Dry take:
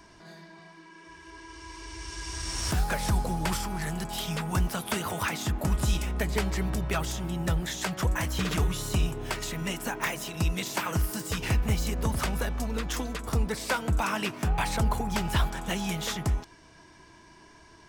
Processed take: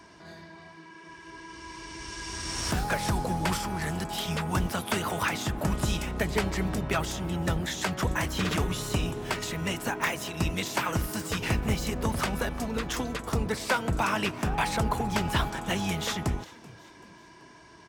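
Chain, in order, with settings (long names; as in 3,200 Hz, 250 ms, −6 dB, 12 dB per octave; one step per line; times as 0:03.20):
sub-octave generator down 1 octave, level −4 dB
high-pass filter 140 Hz 6 dB per octave
high-shelf EQ 5,900 Hz −5 dB
echo with shifted repeats 383 ms, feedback 47%, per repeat +65 Hz, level −21 dB
level +2.5 dB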